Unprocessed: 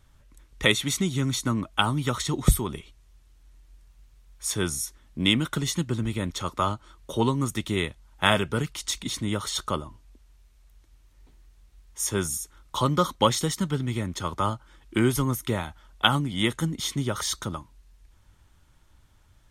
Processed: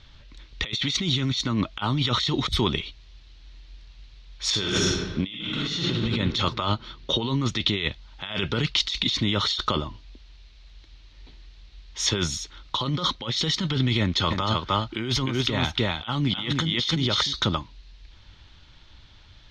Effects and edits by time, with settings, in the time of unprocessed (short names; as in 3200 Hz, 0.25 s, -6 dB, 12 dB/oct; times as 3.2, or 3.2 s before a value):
4.45–6.01 reverb throw, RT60 1.4 s, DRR -2 dB
6.54–7.8 LPF 7000 Hz
14–17.33 echo 0.305 s -6 dB
whole clip: EQ curve 1300 Hz 0 dB, 4100 Hz +13 dB, 6200 Hz -2 dB, 10000 Hz -30 dB; negative-ratio compressor -28 dBFS, ratio -1; gain +2 dB